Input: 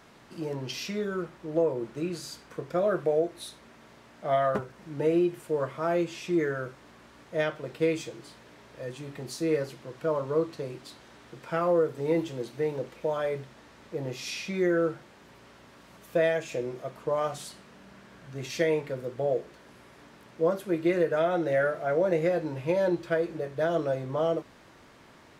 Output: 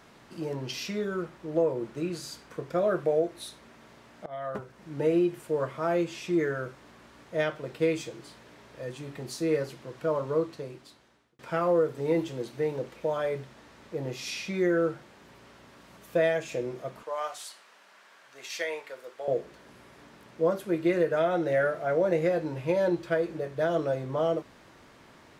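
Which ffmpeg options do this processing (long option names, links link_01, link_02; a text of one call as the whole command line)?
ffmpeg -i in.wav -filter_complex "[0:a]asettb=1/sr,asplit=3[link_01][link_02][link_03];[link_01]atrim=end=17.034[link_04];[link_02]atrim=start=17.03:end=19.28,asetpts=PTS-STARTPTS,afade=type=in:duration=0.004:curve=qsin,afade=type=out:start_time=2.246:duration=0.004:curve=qsin,highpass=800[link_05];[link_03]atrim=start=19.276[link_06];[link_04][link_05]acrossfade=duration=0.004:curve1=hsin:curve2=qsin[link_07];[link_07][link_06]acrossfade=duration=0.004:curve1=qsin:curve2=hsin,asplit=3[link_08][link_09][link_10];[link_08]atrim=end=4.26,asetpts=PTS-STARTPTS,afade=type=out:start_time=4.256:duration=0.004:curve=hsin:silence=0.0944061[link_11];[link_09]atrim=start=4.26:end=11.39,asetpts=PTS-STARTPTS,afade=type=in:duration=0.71:silence=0.0944061,afade=type=out:start_time=6.05:duration=1.08[link_12];[link_10]atrim=start=11.39,asetpts=PTS-STARTPTS,afade=type=in:duration=0.004:curve=hsin[link_13];[link_11][link_12][link_13]concat=n=3:v=0:a=1" out.wav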